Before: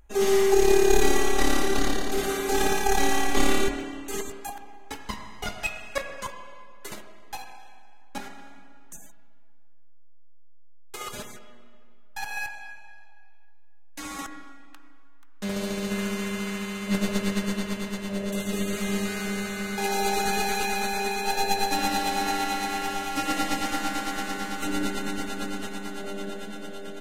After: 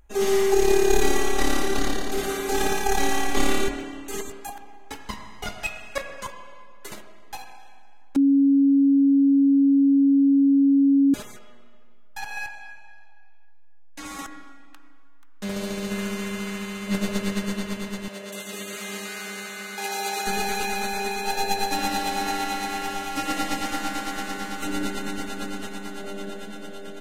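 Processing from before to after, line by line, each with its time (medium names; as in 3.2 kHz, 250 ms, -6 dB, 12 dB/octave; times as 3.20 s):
8.16–11.14 s: bleep 277 Hz -14 dBFS
12.20–14.06 s: treble shelf 10 kHz -8.5 dB
18.08–20.27 s: high-pass 740 Hz 6 dB/octave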